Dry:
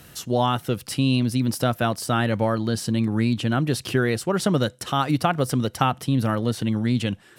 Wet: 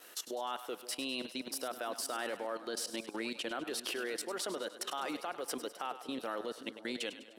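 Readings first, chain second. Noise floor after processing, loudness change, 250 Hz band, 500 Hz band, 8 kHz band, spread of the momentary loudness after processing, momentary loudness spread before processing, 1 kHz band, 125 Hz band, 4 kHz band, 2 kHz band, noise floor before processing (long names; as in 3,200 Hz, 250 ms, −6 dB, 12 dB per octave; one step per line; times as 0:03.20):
−54 dBFS, −15.5 dB, −20.5 dB, −13.5 dB, −7.0 dB, 4 LU, 3 LU, −15.0 dB, below −40 dB, −9.0 dB, −11.5 dB, −51 dBFS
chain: high-pass filter 360 Hz 24 dB per octave
noise gate with hold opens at −44 dBFS
brickwall limiter −15 dBFS, peak gain reduction 10 dB
output level in coarse steps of 17 dB
echo with a time of its own for lows and highs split 600 Hz, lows 522 ms, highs 101 ms, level −12 dB
level −4 dB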